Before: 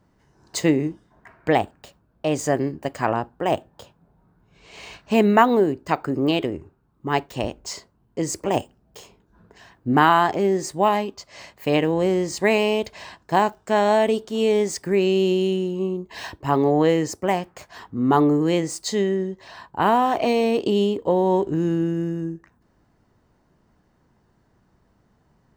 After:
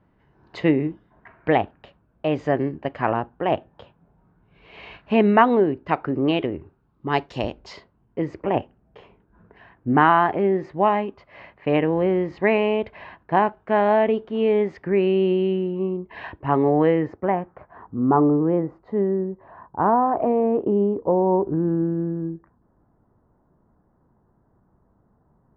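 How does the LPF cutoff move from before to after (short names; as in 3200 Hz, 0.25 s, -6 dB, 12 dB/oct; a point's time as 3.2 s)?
LPF 24 dB/oct
6.46 s 3100 Hz
7.33 s 5300 Hz
8.23 s 2500 Hz
16.76 s 2500 Hz
17.85 s 1300 Hz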